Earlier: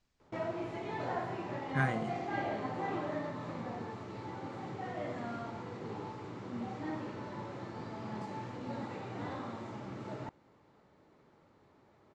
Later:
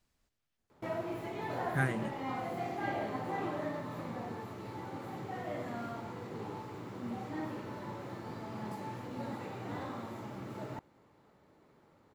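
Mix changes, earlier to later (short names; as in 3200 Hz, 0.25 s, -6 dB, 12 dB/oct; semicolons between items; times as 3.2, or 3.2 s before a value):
background: entry +0.50 s; master: remove LPF 7200 Hz 24 dB/oct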